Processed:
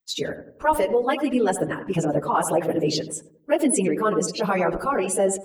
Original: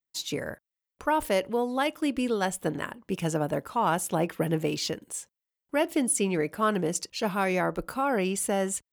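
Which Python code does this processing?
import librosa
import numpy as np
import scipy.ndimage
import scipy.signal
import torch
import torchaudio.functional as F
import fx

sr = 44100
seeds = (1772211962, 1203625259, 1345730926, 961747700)

y = fx.envelope_sharpen(x, sr, power=1.5)
y = fx.echo_filtered(y, sr, ms=148, feedback_pct=47, hz=860.0, wet_db=-8)
y = fx.stretch_vocoder_free(y, sr, factor=0.61)
y = y * librosa.db_to_amplitude(8.5)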